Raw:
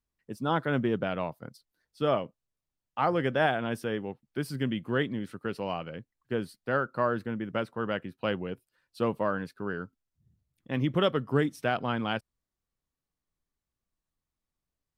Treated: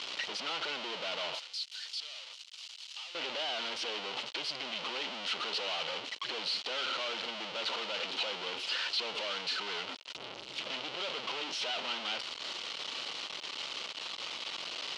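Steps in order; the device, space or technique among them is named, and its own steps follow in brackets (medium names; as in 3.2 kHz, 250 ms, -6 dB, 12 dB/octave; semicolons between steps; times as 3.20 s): home computer beeper (one-bit comparator; cabinet simulation 690–5000 Hz, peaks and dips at 740 Hz -4 dB, 1.1 kHz -4 dB, 1.7 kHz -8 dB, 3 kHz +9 dB, 4.2 kHz +4 dB); 1.39–3.15 s: differentiator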